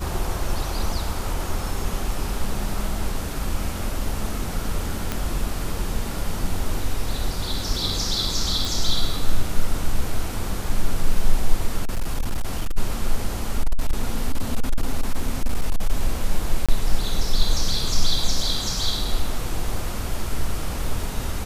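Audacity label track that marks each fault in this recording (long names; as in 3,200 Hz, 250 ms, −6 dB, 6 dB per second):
5.120000	5.120000	click −9 dBFS
8.650000	8.650000	click
11.830000	12.780000	clipping −18 dBFS
13.600000	15.900000	clipping −13.5 dBFS
16.660000	16.690000	drop-out 26 ms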